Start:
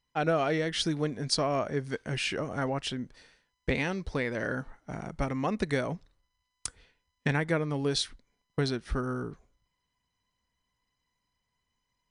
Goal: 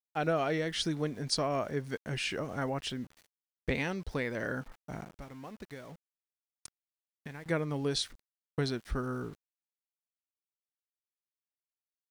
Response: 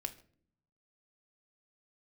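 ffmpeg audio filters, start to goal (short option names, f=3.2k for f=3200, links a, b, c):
-filter_complex "[0:a]asettb=1/sr,asplit=3[a][b][c];[a]atrim=end=5.044[d];[b]atrim=start=5.04:end=7.46,asetpts=PTS-STARTPTS,afade=t=in:d=0.004:c=qsin,afade=t=out:st=2.416:d=0.004:c=qsin,acompressor=threshold=-51dB:ratio=2[e];[c]atrim=start=7.456[f];[d][e]acrossfade=d=0.004:c1=hsin:c2=qsin[g];[g][f]acrossfade=d=0.004:c1=qsin:c2=hsin,aeval=exprs='val(0)*gte(abs(val(0)),0.00335)':c=same,volume=-3dB"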